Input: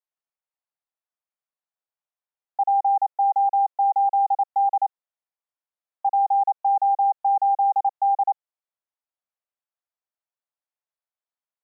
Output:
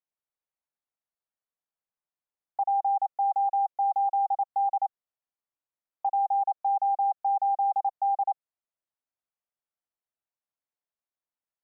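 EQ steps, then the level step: distance through air 490 m; dynamic bell 840 Hz, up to -5 dB, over -36 dBFS, Q 5.7; 0.0 dB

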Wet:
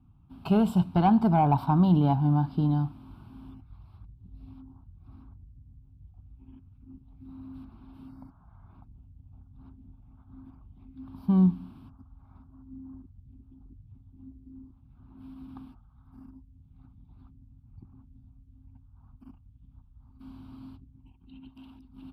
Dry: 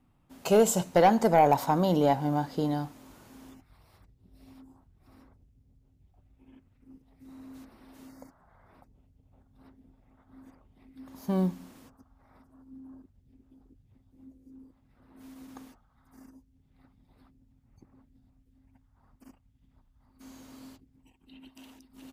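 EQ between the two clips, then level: high-pass 62 Hz; RIAA curve playback; static phaser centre 1.9 kHz, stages 6; 0.0 dB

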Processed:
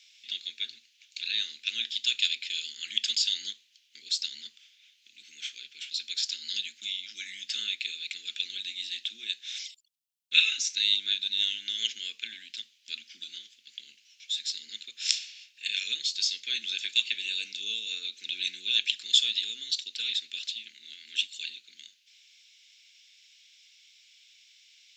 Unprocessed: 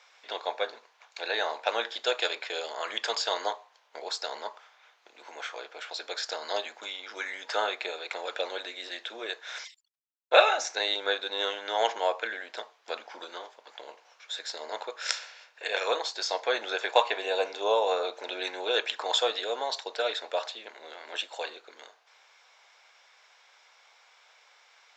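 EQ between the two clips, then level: Chebyshev band-stop 200–2800 Hz, order 3; bass shelf 290 Hz -5 dB; +6.0 dB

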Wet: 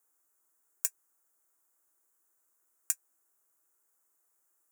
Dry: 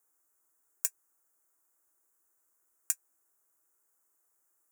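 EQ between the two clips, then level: bass shelf 150 Hz -5 dB; 0.0 dB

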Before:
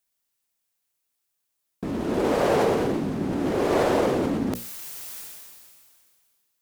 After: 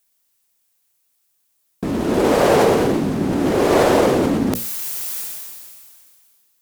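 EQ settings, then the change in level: treble shelf 5.5 kHz +5 dB; +7.0 dB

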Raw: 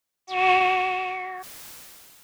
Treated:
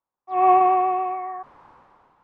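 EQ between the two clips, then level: band-stop 650 Hz, Q 12; dynamic bell 390 Hz, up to +6 dB, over -37 dBFS, Q 1.1; resonant low-pass 990 Hz, resonance Q 3.5; -2.5 dB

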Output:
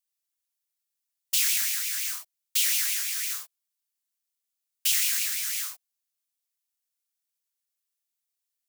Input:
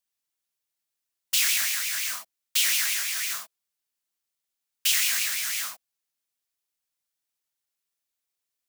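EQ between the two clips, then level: high-pass 1.1 kHz 6 dB/octave; treble shelf 4.8 kHz +6.5 dB; -5.5 dB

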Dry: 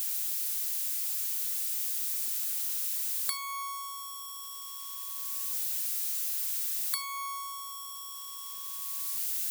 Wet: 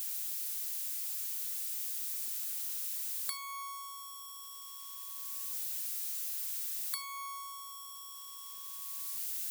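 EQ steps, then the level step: peaking EQ 130 Hz -6 dB 0.58 oct; -5.5 dB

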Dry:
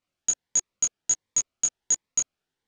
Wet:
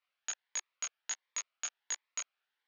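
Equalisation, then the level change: high-pass 1.3 kHz 12 dB/octave; distance through air 270 m; +6.0 dB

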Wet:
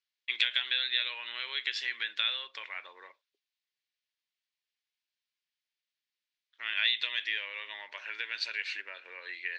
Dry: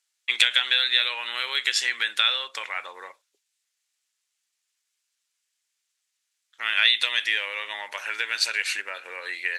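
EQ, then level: cabinet simulation 220–4600 Hz, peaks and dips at 510 Hz -4 dB, 790 Hz -7 dB, 1.3 kHz -6 dB; -8.0 dB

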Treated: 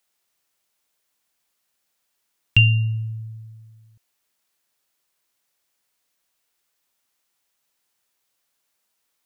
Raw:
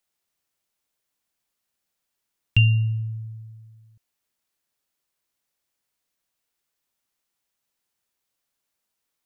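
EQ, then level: bass shelf 310 Hz -6.5 dB; +6.5 dB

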